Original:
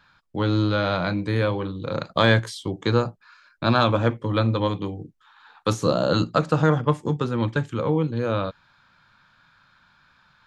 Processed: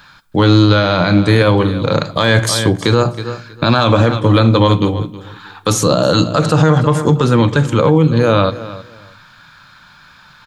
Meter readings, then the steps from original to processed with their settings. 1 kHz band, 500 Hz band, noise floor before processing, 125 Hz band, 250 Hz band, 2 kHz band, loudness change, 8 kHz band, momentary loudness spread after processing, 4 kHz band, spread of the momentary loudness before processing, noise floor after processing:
+9.0 dB, +9.5 dB, -60 dBFS, +11.0 dB, +11.0 dB, +8.5 dB, +10.5 dB, +19.0 dB, 8 LU, +11.5 dB, 10 LU, -45 dBFS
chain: treble shelf 6.1 kHz +11 dB; feedback delay 318 ms, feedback 20%, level -18 dB; simulated room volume 1900 m³, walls furnished, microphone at 0.42 m; loudness maximiser +15 dB; trim -1 dB

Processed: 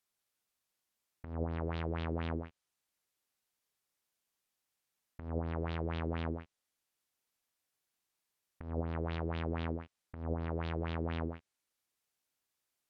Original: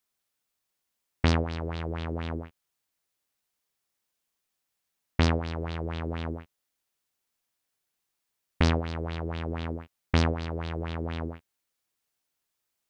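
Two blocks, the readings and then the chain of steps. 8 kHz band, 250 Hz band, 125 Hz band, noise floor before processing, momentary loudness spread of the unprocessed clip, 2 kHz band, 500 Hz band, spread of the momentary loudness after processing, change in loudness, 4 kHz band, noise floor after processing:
no reading, -7.5 dB, -8.5 dB, -82 dBFS, 11 LU, -10.5 dB, -6.0 dB, 8 LU, -8.0 dB, -14.5 dB, under -85 dBFS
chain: low-pass that closes with the level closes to 900 Hz, closed at -23.5 dBFS; bass shelf 62 Hz -3 dB; compressor with a negative ratio -28 dBFS, ratio -0.5; trim -5 dB

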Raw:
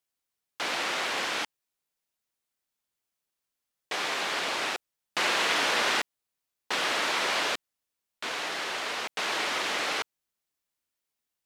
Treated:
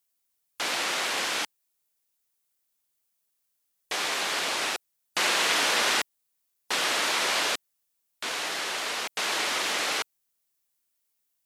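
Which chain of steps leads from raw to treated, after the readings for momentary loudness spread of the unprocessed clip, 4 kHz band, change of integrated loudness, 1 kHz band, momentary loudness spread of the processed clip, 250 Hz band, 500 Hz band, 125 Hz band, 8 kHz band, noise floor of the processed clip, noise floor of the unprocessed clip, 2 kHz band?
11 LU, +2.5 dB, +2.0 dB, +0.5 dB, 11 LU, 0.0 dB, 0.0 dB, 0.0 dB, +6.0 dB, -77 dBFS, under -85 dBFS, +1.0 dB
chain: treble shelf 6.4 kHz +11.5 dB; spectral gate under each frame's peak -30 dB strong

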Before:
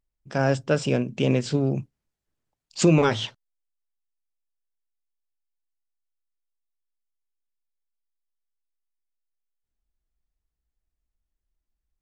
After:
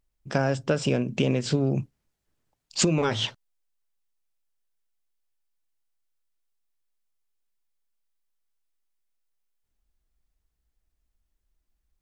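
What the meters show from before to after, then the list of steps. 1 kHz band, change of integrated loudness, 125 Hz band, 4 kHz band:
-3.0 dB, -2.5 dB, -2.5 dB, +2.5 dB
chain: compression 10:1, threshold -25 dBFS, peak gain reduction 12.5 dB; trim +5.5 dB

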